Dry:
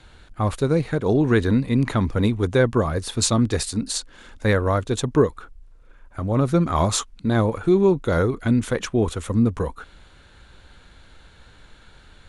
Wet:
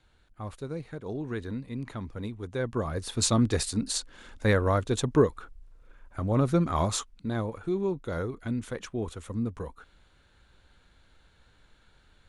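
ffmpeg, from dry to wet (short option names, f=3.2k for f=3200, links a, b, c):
-af "volume=-4dB,afade=t=in:st=2.49:d=0.87:silence=0.251189,afade=t=out:st=6.32:d=1.14:silence=0.398107"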